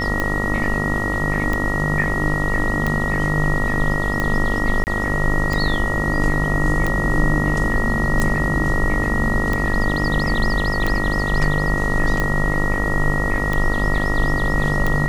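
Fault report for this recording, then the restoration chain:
buzz 50 Hz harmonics 28 -24 dBFS
tick 45 rpm -8 dBFS
whine 1.9 kHz -23 dBFS
4.84–4.87 s: dropout 29 ms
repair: de-click; de-hum 50 Hz, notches 28; band-stop 1.9 kHz, Q 30; interpolate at 4.84 s, 29 ms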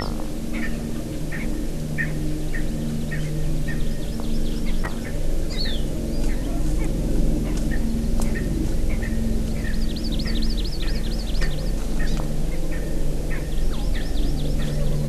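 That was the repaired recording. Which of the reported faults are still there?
nothing left

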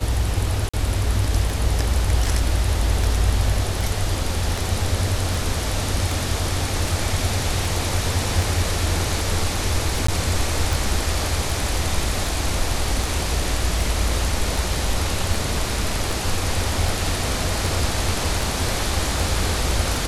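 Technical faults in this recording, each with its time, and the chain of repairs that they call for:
tick 78 rpm
0.69–0.73 s: dropout 45 ms
10.07–10.08 s: dropout 14 ms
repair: de-click; interpolate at 0.69 s, 45 ms; interpolate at 10.07 s, 14 ms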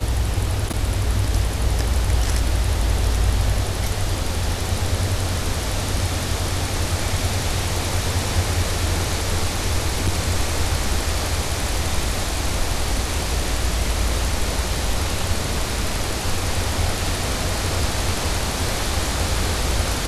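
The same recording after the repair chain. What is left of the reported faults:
nothing left

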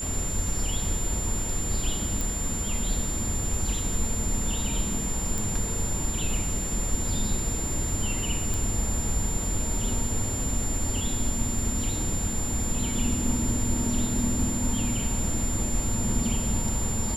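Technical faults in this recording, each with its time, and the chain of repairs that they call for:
whine 7.2 kHz -31 dBFS
2.21 s: pop
5.38 s: pop
8.54 s: pop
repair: de-click; band-stop 7.2 kHz, Q 30

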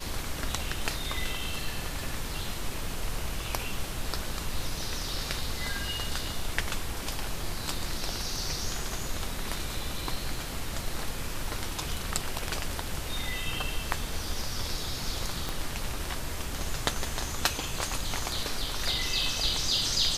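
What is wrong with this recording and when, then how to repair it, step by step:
15.49 s: pop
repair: de-click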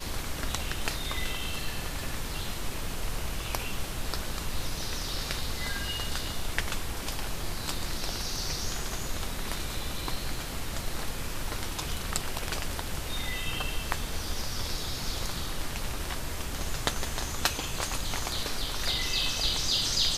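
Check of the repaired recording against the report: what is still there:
15.49 s: pop

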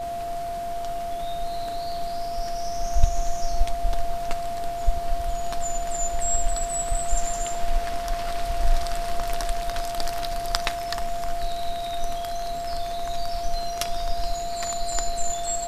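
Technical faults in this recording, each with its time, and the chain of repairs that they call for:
whine 690 Hz -28 dBFS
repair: band-stop 690 Hz, Q 30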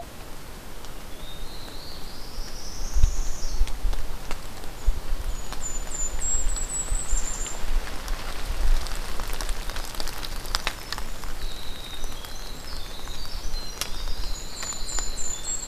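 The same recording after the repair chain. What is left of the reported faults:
nothing left

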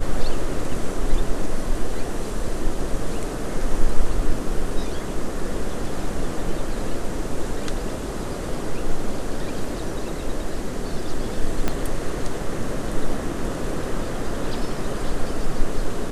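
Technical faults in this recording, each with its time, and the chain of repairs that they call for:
11.68 s: pop -8 dBFS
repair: de-click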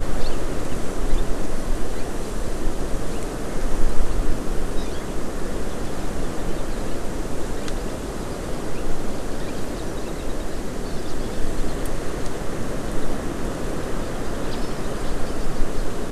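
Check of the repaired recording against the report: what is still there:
11.68 s: pop

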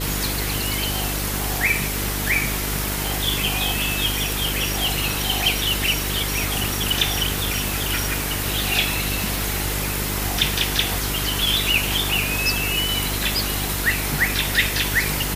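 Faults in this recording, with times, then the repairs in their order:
buzz 50 Hz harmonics 9 -28 dBFS
crackle 50 per s -31 dBFS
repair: de-click; de-hum 50 Hz, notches 9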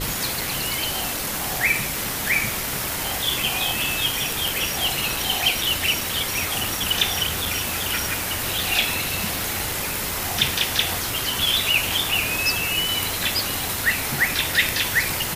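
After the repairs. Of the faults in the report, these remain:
nothing left

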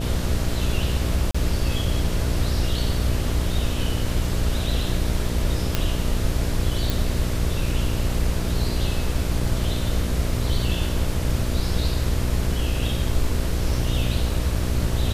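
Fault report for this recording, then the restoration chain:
buzz 60 Hz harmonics 11 -26 dBFS
1.31–1.34 s: dropout 35 ms
5.75 s: pop -6 dBFS
6.90 s: pop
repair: de-click; de-hum 60 Hz, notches 11; interpolate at 1.31 s, 35 ms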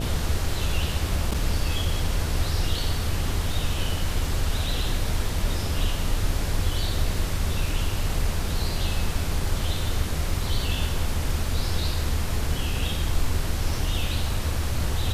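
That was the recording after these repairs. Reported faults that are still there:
nothing left

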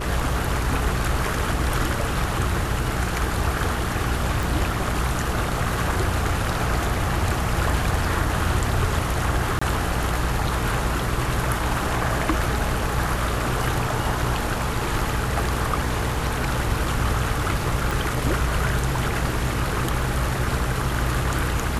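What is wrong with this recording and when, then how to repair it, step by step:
hum 60 Hz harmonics 6 -28 dBFS
4.43 s: pop
9.59–9.62 s: dropout 25 ms
17.91 s: pop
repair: de-click; de-hum 60 Hz, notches 6; interpolate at 9.59 s, 25 ms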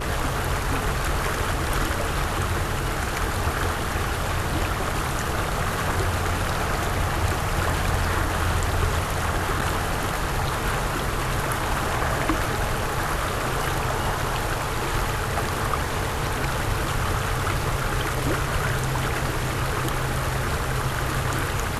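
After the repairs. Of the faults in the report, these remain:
17.91 s: pop

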